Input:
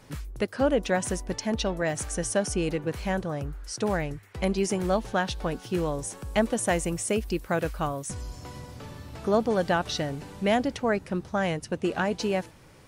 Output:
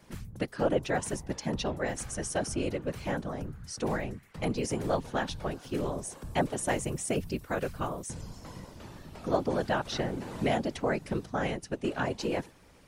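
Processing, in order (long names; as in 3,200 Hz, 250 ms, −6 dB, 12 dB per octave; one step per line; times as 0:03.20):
random phases in short frames
0:09.92–0:11.26: multiband upward and downward compressor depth 70%
level −4.5 dB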